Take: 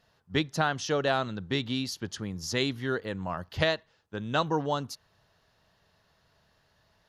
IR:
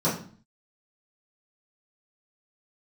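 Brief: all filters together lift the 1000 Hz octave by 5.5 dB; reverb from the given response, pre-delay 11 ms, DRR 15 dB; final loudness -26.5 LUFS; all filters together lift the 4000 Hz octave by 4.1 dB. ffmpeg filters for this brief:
-filter_complex "[0:a]equalizer=f=1k:t=o:g=7,equalizer=f=4k:t=o:g=4.5,asplit=2[a][b];[1:a]atrim=start_sample=2205,adelay=11[c];[b][c]afir=irnorm=-1:irlink=0,volume=-28dB[d];[a][d]amix=inputs=2:normalize=0,volume=0.5dB"

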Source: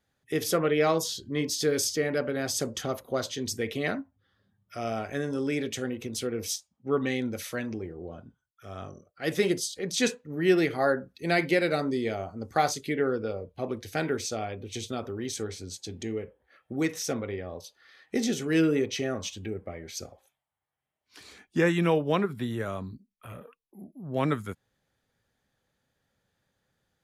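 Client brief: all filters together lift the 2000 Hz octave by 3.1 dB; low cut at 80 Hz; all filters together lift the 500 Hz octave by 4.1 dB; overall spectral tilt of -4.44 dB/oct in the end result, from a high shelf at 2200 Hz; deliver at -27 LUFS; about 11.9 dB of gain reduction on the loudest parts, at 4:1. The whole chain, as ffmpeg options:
-af "highpass=80,equalizer=f=500:t=o:g=5,equalizer=f=2k:t=o:g=5.5,highshelf=f=2.2k:g=-4,acompressor=threshold=-30dB:ratio=4,volume=7.5dB"

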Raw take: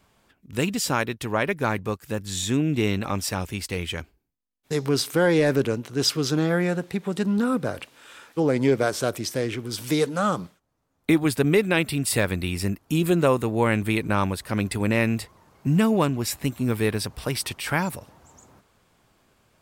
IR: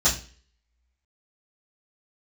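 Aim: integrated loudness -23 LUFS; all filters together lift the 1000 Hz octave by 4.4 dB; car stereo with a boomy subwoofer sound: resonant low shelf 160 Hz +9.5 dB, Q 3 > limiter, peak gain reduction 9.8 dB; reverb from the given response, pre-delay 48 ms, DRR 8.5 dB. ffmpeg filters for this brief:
-filter_complex "[0:a]equalizer=f=1k:t=o:g=6,asplit=2[a][b];[1:a]atrim=start_sample=2205,adelay=48[c];[b][c]afir=irnorm=-1:irlink=0,volume=-22.5dB[d];[a][d]amix=inputs=2:normalize=0,lowshelf=f=160:t=q:w=3:g=9.5,volume=-1.5dB,alimiter=limit=-14dB:level=0:latency=1"

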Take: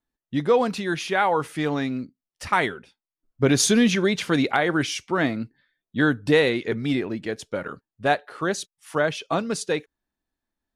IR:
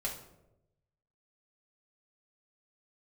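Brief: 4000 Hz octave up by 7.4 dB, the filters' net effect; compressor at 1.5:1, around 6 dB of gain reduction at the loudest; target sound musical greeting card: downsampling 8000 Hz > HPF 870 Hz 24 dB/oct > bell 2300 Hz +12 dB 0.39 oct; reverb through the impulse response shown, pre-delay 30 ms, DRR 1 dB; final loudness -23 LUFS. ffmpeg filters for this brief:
-filter_complex "[0:a]equalizer=f=4k:t=o:g=7.5,acompressor=threshold=-30dB:ratio=1.5,asplit=2[a][b];[1:a]atrim=start_sample=2205,adelay=30[c];[b][c]afir=irnorm=-1:irlink=0,volume=-3.5dB[d];[a][d]amix=inputs=2:normalize=0,aresample=8000,aresample=44100,highpass=f=870:w=0.5412,highpass=f=870:w=1.3066,equalizer=f=2.3k:t=o:w=0.39:g=12,volume=2.5dB"

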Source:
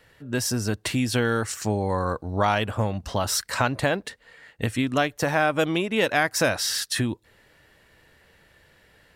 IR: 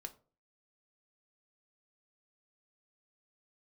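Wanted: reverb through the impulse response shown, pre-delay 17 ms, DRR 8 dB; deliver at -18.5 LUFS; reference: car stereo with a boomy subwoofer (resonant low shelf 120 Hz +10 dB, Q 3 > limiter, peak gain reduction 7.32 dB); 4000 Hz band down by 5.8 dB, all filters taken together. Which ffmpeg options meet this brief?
-filter_complex "[0:a]equalizer=f=4k:t=o:g=-8,asplit=2[a][b];[1:a]atrim=start_sample=2205,adelay=17[c];[b][c]afir=irnorm=-1:irlink=0,volume=-3.5dB[d];[a][d]amix=inputs=2:normalize=0,lowshelf=f=120:t=q:w=3:g=10,volume=5.5dB,alimiter=limit=-8.5dB:level=0:latency=1"

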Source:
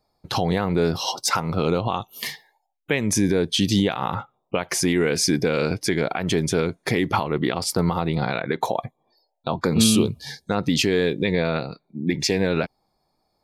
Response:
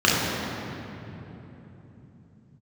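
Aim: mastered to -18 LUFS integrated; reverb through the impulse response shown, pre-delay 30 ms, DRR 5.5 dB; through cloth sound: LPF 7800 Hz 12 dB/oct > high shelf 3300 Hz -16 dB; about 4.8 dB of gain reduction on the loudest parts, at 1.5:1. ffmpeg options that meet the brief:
-filter_complex "[0:a]acompressor=threshold=-27dB:ratio=1.5,asplit=2[a][b];[1:a]atrim=start_sample=2205,adelay=30[c];[b][c]afir=irnorm=-1:irlink=0,volume=-27.5dB[d];[a][d]amix=inputs=2:normalize=0,lowpass=7.8k,highshelf=f=3.3k:g=-16,volume=7.5dB"

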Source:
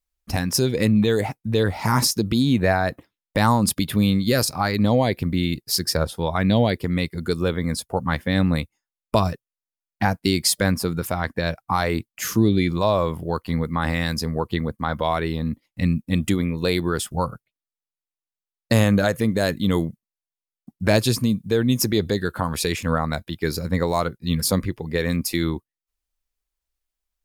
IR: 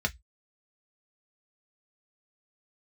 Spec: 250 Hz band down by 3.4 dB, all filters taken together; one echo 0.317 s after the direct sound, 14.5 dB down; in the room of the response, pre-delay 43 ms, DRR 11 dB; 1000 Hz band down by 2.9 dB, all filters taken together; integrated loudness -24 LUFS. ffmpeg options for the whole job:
-filter_complex "[0:a]equalizer=f=250:t=o:g=-4.5,equalizer=f=1k:t=o:g=-3.5,aecho=1:1:317:0.188,asplit=2[a][b];[1:a]atrim=start_sample=2205,adelay=43[c];[b][c]afir=irnorm=-1:irlink=0,volume=-18.5dB[d];[a][d]amix=inputs=2:normalize=0,volume=-0.5dB"

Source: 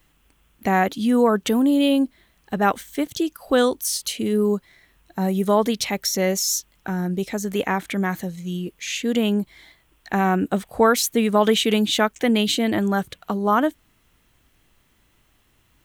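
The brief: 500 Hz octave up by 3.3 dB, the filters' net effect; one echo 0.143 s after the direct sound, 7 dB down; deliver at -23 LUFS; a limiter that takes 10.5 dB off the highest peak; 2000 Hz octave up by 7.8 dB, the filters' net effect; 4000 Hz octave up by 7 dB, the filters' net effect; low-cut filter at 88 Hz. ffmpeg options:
-af "highpass=88,equalizer=f=500:t=o:g=3.5,equalizer=f=2k:t=o:g=8.5,equalizer=f=4k:t=o:g=6,alimiter=limit=-11dB:level=0:latency=1,aecho=1:1:143:0.447,volume=-2dB"

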